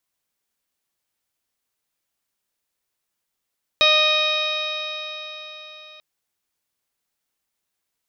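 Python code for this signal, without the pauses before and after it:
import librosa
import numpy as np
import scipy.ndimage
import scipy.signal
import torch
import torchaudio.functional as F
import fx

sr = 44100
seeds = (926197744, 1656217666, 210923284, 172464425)

y = fx.additive_stiff(sr, length_s=2.19, hz=613.0, level_db=-20, upper_db=(-2.5, -10.0, 2.5, -6.5, 5.0, -13.5, -7.5, -19.0), decay_s=4.32, stiffness=0.0017)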